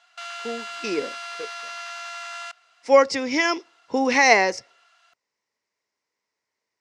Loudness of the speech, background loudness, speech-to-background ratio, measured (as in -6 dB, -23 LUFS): -20.0 LUFS, -34.0 LUFS, 14.0 dB